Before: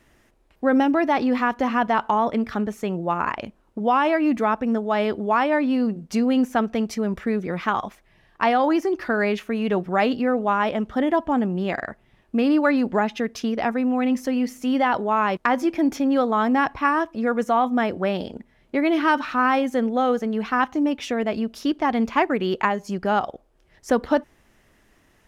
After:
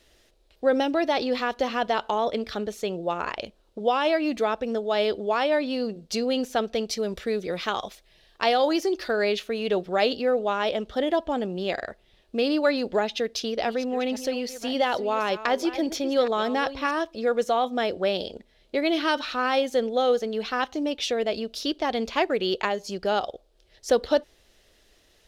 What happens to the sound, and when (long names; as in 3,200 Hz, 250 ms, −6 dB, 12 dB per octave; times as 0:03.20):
0:06.97–0:09.11: high-shelf EQ 5,200 Hz +5 dB
0:13.03–0:16.91: delay that plays each chunk backwards 567 ms, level −13 dB
whole clip: octave-band graphic EQ 125/250/500/1,000/2,000/4,000 Hz −10/−8/+5/−8/−5/+11 dB